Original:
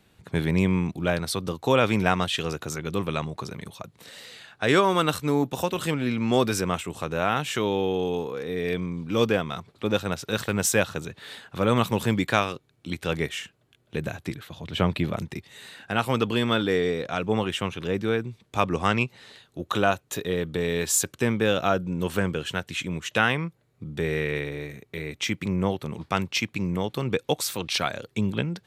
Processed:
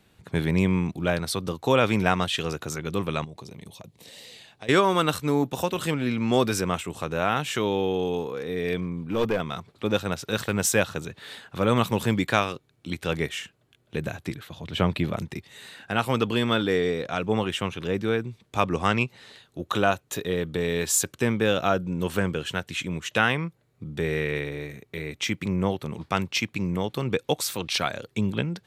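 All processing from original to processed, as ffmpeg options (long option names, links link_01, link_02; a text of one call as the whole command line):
ffmpeg -i in.wav -filter_complex "[0:a]asettb=1/sr,asplit=3[link_01][link_02][link_03];[link_01]atrim=end=3.244[link_04];[link_02]atrim=start=3.24:end=4.69,asetpts=PTS-STARTPTS,afade=type=in:duration=0.004:curve=qsin,afade=type=out:start_time=1.446:duration=0.004:curve=qsin,equalizer=frequency=1400:width_type=o:width=0.68:gain=-13.5,acompressor=threshold=-38dB:ratio=4:attack=3.2:release=140:knee=1:detection=peak[link_05];[link_03]atrim=start=4.686[link_06];[link_04][link_05]acrossfade=duration=0.004:curve1=hsin:curve2=qsin[link_07];[link_07][link_06]acrossfade=duration=0.004:curve1=qsin:curve2=hsin,asettb=1/sr,asplit=3[link_08][link_09][link_10];[link_08]atrim=end=8.814[link_11];[link_09]atrim=start=8.81:end=9.4,asetpts=PTS-STARTPTS,afade=type=in:duration=0.004:curve=qsin,afade=type=out:start_time=0.586:duration=0.004:curve=qsin,equalizer=frequency=5400:width=0.79:gain=-9.5,bandreject=frequency=910:width=19,aeval=exprs='clip(val(0),-1,0.0794)':channel_layout=same[link_12];[link_10]atrim=start=9.396[link_13];[link_11][link_12]acrossfade=duration=0.004:curve1=hsin:curve2=qsin[link_14];[link_14][link_13]acrossfade=duration=0.004:curve1=qsin:curve2=hsin" out.wav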